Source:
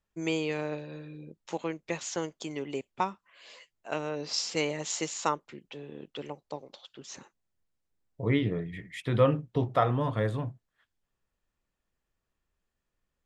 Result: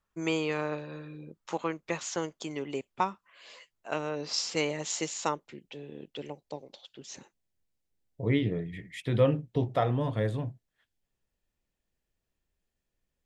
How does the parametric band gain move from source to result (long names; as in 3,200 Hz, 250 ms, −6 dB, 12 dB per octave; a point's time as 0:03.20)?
parametric band 1,200 Hz 0.76 octaves
0:01.76 +8.5 dB
0:02.22 +2 dB
0:04.55 +2 dB
0:05.78 −8 dB